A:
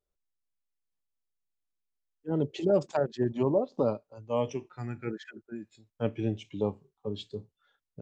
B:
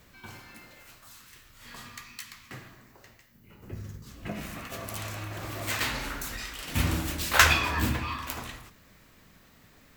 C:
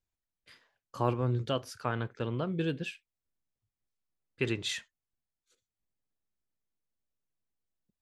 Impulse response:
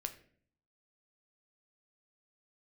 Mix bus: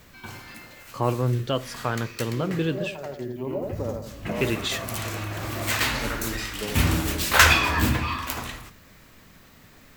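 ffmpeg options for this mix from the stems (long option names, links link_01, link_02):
-filter_complex "[0:a]volume=-5.5dB,asplit=2[link_01][link_02];[link_02]volume=-3dB[link_03];[1:a]volume=2dB,asplit=2[link_04][link_05];[link_05]volume=-3.5dB[link_06];[2:a]volume=2.5dB,asplit=3[link_07][link_08][link_09];[link_08]volume=-4.5dB[link_10];[link_09]apad=whole_len=353284[link_11];[link_01][link_11]sidechaincompress=threshold=-40dB:ratio=8:attack=16:release=436[link_12];[3:a]atrim=start_sample=2205[link_13];[link_06][link_10]amix=inputs=2:normalize=0[link_14];[link_14][link_13]afir=irnorm=-1:irlink=0[link_15];[link_03]aecho=0:1:84|168|252|336|420:1|0.39|0.152|0.0593|0.0231[link_16];[link_12][link_04][link_07][link_15][link_16]amix=inputs=5:normalize=0,asoftclip=type=tanh:threshold=-5dB"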